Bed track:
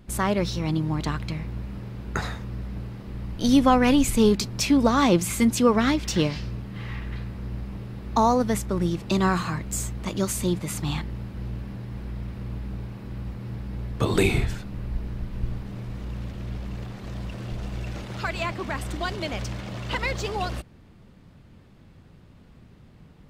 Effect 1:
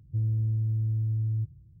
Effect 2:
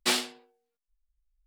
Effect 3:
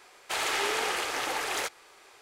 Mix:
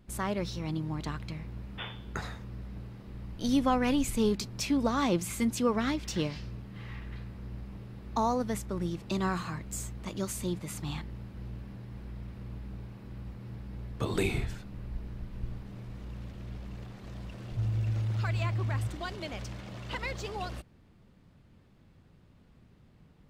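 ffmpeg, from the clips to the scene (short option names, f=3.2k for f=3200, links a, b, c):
-filter_complex "[0:a]volume=-8.5dB[a];[2:a]lowpass=f=3.2k:t=q:w=0.5098,lowpass=f=3.2k:t=q:w=0.6013,lowpass=f=3.2k:t=q:w=0.9,lowpass=f=3.2k:t=q:w=2.563,afreqshift=-3800,atrim=end=1.46,asetpts=PTS-STARTPTS,volume=-12.5dB,afade=t=in:d=0.004:c=hsin,afade=t=out:st=1.456:d=0.004:c=hsin,adelay=1720[b];[1:a]atrim=end=1.8,asetpts=PTS-STARTPTS,volume=-3.5dB,afade=t=in:d=0.004:c=hsin,afade=t=out:st=1.796:d=0.004:c=hsin,adelay=17430[c];[a][b][c]amix=inputs=3:normalize=0"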